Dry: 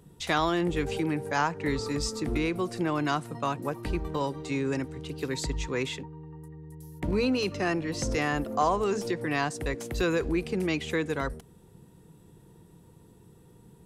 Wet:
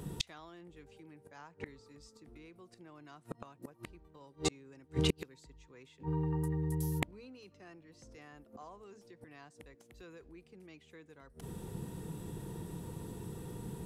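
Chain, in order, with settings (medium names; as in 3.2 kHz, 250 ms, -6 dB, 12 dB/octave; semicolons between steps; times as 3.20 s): inverted gate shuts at -27 dBFS, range -37 dB; trim +10.5 dB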